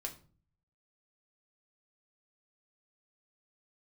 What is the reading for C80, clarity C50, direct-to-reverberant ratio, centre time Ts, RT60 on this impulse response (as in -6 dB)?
18.0 dB, 13.0 dB, 2.0 dB, 11 ms, 0.40 s